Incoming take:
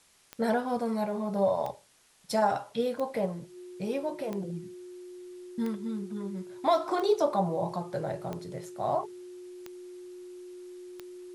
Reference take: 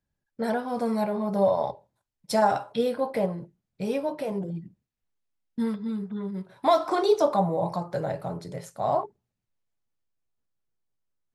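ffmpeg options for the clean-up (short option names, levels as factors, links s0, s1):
-af "adeclick=t=4,bandreject=f=360:w=30,agate=range=0.0891:threshold=0.01,asetnsamples=n=441:p=0,asendcmd='0.77 volume volume 4dB',volume=1"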